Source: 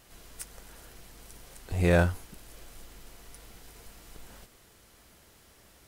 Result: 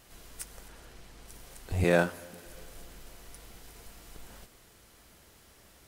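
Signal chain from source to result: 0.68–1.28 s: treble shelf 9.1 kHz -11 dB; 1.84–2.46 s: high-pass 180 Hz 24 dB/octave; reverberation RT60 2.9 s, pre-delay 7 ms, DRR 19.5 dB

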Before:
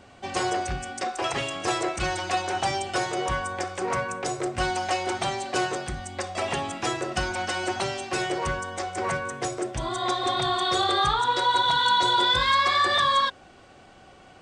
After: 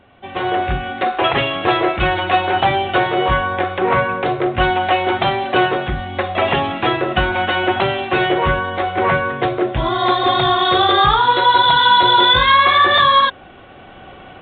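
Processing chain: level rider gain up to 13 dB; µ-law 64 kbps 8 kHz

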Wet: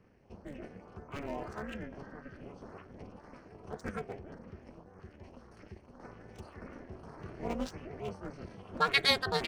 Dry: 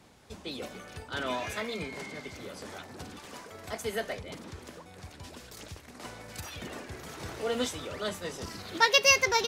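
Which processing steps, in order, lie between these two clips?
local Wiener filter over 9 samples; LFO notch saw up 1.8 Hz 790–4300 Hz; formant shift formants -5 st; AM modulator 290 Hz, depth 95%

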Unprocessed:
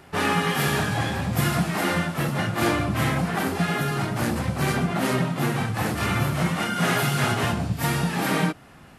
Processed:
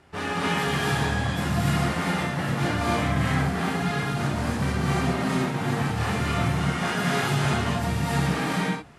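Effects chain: low-pass 8.8 kHz 12 dB/octave; peaking EQ 69 Hz +9 dB 0.33 oct; gated-style reverb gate 320 ms rising, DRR -5 dB; trim -7.5 dB

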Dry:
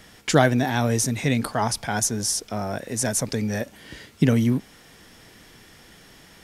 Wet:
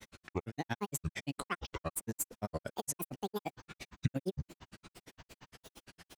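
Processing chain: compression 6:1, threshold -27 dBFS, peak gain reduction 15 dB; spring tank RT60 3.4 s, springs 54 ms, chirp 70 ms, DRR 18.5 dB; speed mistake 24 fps film run at 25 fps; granulator 61 ms, grains 8.7 per s, spray 13 ms, pitch spread up and down by 12 st; trim -1.5 dB

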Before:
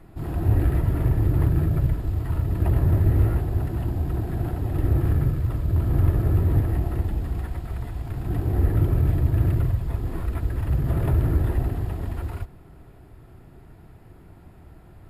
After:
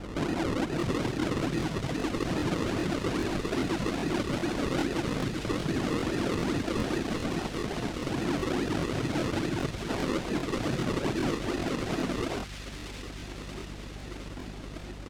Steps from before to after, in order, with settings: high-pass 220 Hz 24 dB/octave; reverb removal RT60 1 s; bass shelf 430 Hz +8 dB; band-stop 990 Hz, Q 23; compression 20:1, threshold -34 dBFS, peak gain reduction 13.5 dB; hum 50 Hz, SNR 12 dB; decimation with a swept rate 39×, swing 100% 2.4 Hz; hard clipper -32 dBFS, distortion -19 dB; harmony voices -5 st -8 dB, +7 st -17 dB; distance through air 59 m; feedback echo behind a high-pass 632 ms, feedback 70%, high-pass 2.5 kHz, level -3 dB; crackling interface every 0.40 s, samples 1024, repeat, from 0.78 s; trim +8.5 dB

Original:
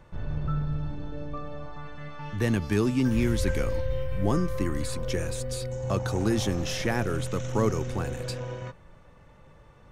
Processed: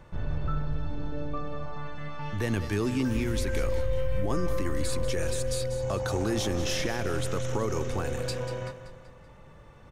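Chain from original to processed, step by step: dynamic bell 170 Hz, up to -6 dB, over -38 dBFS, Q 1.1; peak limiter -21.5 dBFS, peak gain reduction 8.5 dB; feedback delay 191 ms, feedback 47%, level -12 dB; trim +2 dB

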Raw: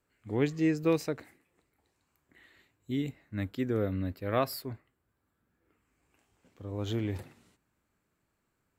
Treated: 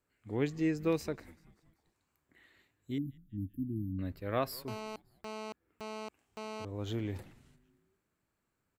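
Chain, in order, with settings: 2.98–3.99 s: brick-wall FIR band-stop 350–9800 Hz; frequency-shifting echo 193 ms, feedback 53%, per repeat -120 Hz, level -23 dB; 4.68–6.65 s: mobile phone buzz -38 dBFS; trim -4 dB

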